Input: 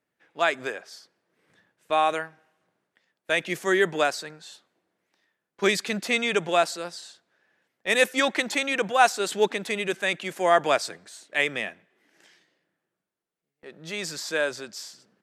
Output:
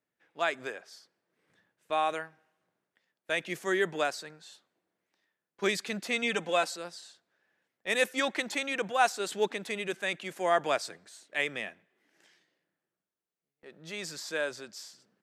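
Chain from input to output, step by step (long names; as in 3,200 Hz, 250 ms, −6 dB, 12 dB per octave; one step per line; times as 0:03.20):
0:06.22–0:06.76: comb filter 3.9 ms, depth 69%
level −6.5 dB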